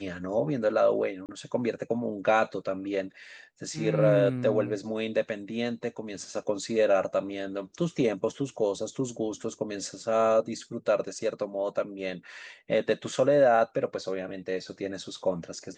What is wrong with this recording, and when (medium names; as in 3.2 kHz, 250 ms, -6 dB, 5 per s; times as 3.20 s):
1.26–1.29 s: dropout 28 ms